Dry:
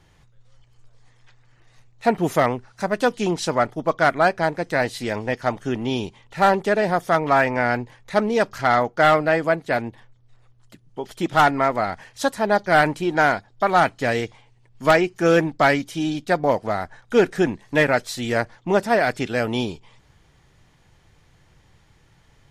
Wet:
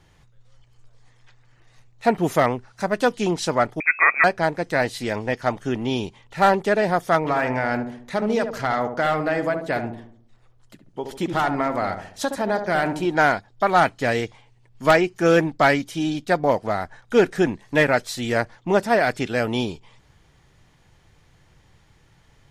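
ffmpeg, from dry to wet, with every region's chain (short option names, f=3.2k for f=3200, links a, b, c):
-filter_complex "[0:a]asettb=1/sr,asplit=3[a][b][c];[a]atrim=end=3.804[d];[b]atrim=start=3.8:end=4.24,asetpts=PTS-STARTPTS,afade=t=in:d=0.004:c=qsin,afade=t=out:st=0.436:d=0.004:c=qsin,lowshelf=f=190:g=9,lowpass=f=2.2k:t=q:w=0.5098,lowpass=f=2.2k:t=q:w=0.6013,lowpass=f=2.2k:t=q:w=0.9,lowpass=f=2.2k:t=q:w=2.563,afreqshift=-2600[e];[c]atrim=start=4.236[f];[d][e]acrossfade=d=0.004:c1=hsin:c2=qsin[g];[g][f]acrossfade=d=0.004:c1=qsin:c2=hsin,asettb=1/sr,asplit=3[h][i][j];[h]atrim=end=7.184[k];[i]atrim=start=7.18:end=13.06,asetpts=PTS-STARTPTS,afade=t=in:d=0.004:c=qsin,afade=t=out:st=5.876:d=0.004:c=qsin,acompressor=threshold=-18dB:ratio=4:attack=3.2:release=140:knee=1:detection=peak,asplit=2[l][m];[m]adelay=70,lowpass=f=880:p=1,volume=-5.5dB,asplit=2[n][o];[o]adelay=70,lowpass=f=880:p=1,volume=0.52,asplit=2[p][q];[q]adelay=70,lowpass=f=880:p=1,volume=0.52,asplit=2[r][s];[s]adelay=70,lowpass=f=880:p=1,volume=0.52,asplit=2[t][u];[u]adelay=70,lowpass=f=880:p=1,volume=0.52,asplit=2[v][w];[w]adelay=70,lowpass=f=880:p=1,volume=0.52,asplit=2[x][y];[y]adelay=70,lowpass=f=880:p=1,volume=0.52[z];[l][n][p][r][t][v][x][z]amix=inputs=8:normalize=0,atrim=end_sample=259308[aa];[j]atrim=start=13.056[ab];[k][aa]acrossfade=d=0.004:c1=hsin:c2=qsin[ac];[ac][ab]acrossfade=d=0.004:c1=qsin:c2=hsin"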